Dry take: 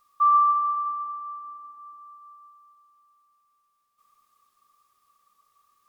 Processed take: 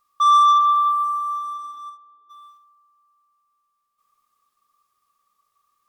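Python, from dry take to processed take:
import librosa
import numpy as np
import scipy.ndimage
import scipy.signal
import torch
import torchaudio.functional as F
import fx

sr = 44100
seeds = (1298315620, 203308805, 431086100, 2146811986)

y = fx.leveller(x, sr, passes=2)
y = fx.bandpass_q(y, sr, hz=fx.line((1.89, 700.0), (2.29, 410.0)), q=2.6, at=(1.89, 2.29), fade=0.02)
y = fx.room_early_taps(y, sr, ms=(47, 70), db=(-11.5, -15.0))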